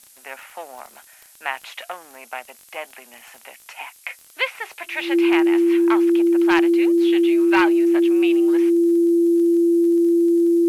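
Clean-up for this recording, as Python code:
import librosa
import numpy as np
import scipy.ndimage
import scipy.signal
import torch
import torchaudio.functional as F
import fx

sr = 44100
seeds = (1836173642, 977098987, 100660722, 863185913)

y = fx.fix_declip(x, sr, threshold_db=-8.0)
y = fx.fix_declick_ar(y, sr, threshold=6.5)
y = fx.notch(y, sr, hz=340.0, q=30.0)
y = fx.noise_reduce(y, sr, print_start_s=0.9, print_end_s=1.4, reduce_db=17.0)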